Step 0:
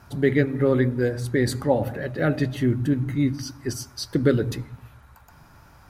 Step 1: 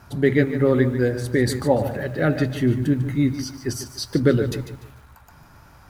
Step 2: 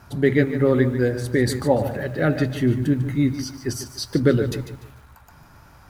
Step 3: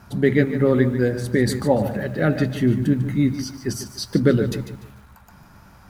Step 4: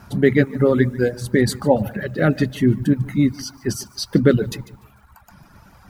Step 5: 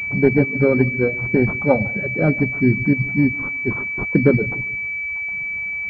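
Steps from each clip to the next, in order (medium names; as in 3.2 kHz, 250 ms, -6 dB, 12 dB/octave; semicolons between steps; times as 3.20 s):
bit-crushed delay 147 ms, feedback 35%, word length 8-bit, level -11.5 dB; trim +2 dB
no audible change
peaking EQ 200 Hz +13 dB 0.21 oct
reverb removal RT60 1.1 s; trim +3 dB
class-D stage that switches slowly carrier 2.3 kHz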